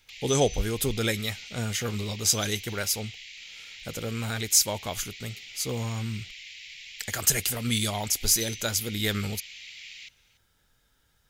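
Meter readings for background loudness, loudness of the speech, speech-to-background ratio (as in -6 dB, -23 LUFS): -40.0 LUFS, -27.0 LUFS, 13.0 dB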